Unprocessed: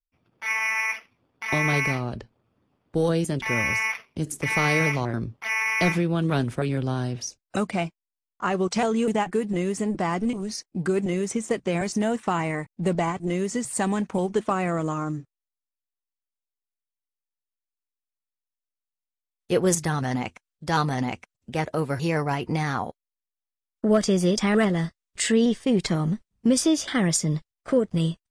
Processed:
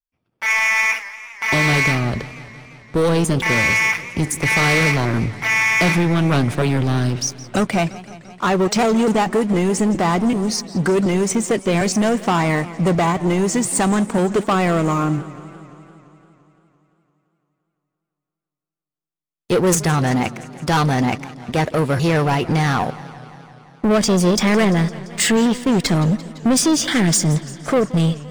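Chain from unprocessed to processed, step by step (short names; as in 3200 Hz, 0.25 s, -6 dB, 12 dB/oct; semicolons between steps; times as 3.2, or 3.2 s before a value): sample leveller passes 3; warbling echo 0.171 s, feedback 71%, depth 169 cents, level -18 dB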